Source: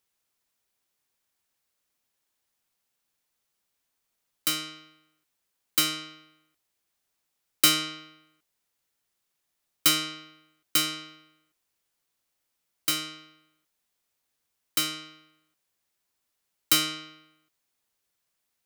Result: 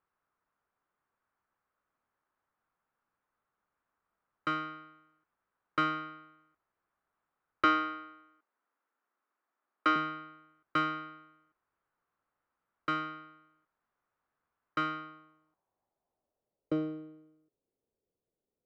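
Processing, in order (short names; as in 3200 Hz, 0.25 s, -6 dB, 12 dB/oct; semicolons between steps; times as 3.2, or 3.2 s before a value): 7.64–9.96 Chebyshev band-pass 250–6400 Hz, order 3; air absorption 53 m; low-pass sweep 1300 Hz -> 450 Hz, 14.94–16.97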